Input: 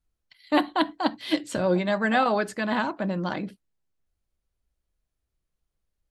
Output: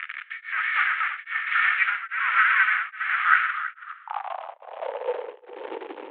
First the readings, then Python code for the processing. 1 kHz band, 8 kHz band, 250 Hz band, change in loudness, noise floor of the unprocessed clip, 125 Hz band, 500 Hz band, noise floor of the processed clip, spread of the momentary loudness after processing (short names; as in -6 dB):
+2.5 dB, under -35 dB, under -20 dB, +3.0 dB, -82 dBFS, under -40 dB, -7.0 dB, -51 dBFS, 17 LU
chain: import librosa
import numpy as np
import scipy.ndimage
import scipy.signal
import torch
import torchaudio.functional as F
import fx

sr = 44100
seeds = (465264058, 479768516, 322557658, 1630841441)

p1 = fx.delta_mod(x, sr, bps=16000, step_db=-34.0)
p2 = fx.filter_sweep_highpass(p1, sr, from_hz=2000.0, to_hz=680.0, start_s=3.14, end_s=4.72, q=6.8)
p3 = p2 * np.sin(2.0 * np.pi * 200.0 * np.arange(len(p2)) / sr)
p4 = fx.filter_sweep_highpass(p3, sr, from_hz=1300.0, to_hz=300.0, start_s=3.49, end_s=5.89, q=6.6)
p5 = p4 + fx.echo_single(p4, sr, ms=328, db=-4.0, dry=0)
p6 = fx.rev_gated(p5, sr, seeds[0], gate_ms=350, shape='falling', drr_db=11.5)
p7 = p6 * np.abs(np.cos(np.pi * 1.2 * np.arange(len(p6)) / sr))
y = p7 * 10.0 ** (4.5 / 20.0)